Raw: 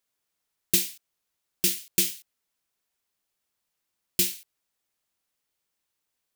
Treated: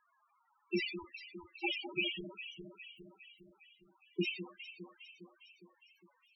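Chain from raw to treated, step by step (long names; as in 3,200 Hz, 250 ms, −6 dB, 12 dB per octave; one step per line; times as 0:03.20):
octave-band graphic EQ 250/1,000/4,000/8,000 Hz −9/+4/−6/−4 dB
mid-hump overdrive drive 27 dB, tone 2,800 Hz, clips at −8.5 dBFS
on a send: delay that swaps between a low-pass and a high-pass 204 ms, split 1,600 Hz, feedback 74%, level −10.5 dB
on the sum: spectral peaks only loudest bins 4
level +6 dB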